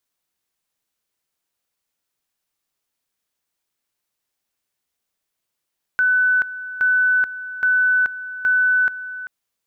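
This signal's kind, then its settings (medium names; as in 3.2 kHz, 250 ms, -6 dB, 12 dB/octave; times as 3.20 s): two-level tone 1.5 kHz -13.5 dBFS, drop 14.5 dB, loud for 0.43 s, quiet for 0.39 s, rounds 4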